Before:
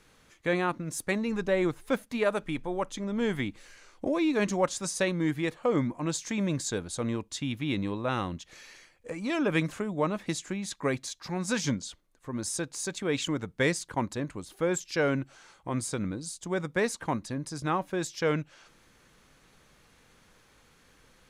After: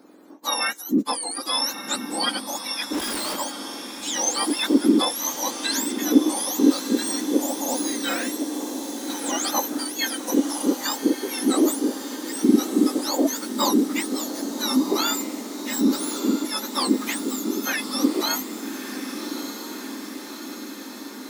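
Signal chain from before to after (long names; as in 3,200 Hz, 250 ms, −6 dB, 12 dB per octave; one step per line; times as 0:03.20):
frequency axis turned over on the octave scale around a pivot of 1,400 Hz
0:02.93–0:03.36: comparator with hysteresis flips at −39.5 dBFS
low shelf with overshoot 200 Hz −12 dB, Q 3
feedback delay with all-pass diffusion 1,216 ms, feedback 67%, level −9 dB
level +6.5 dB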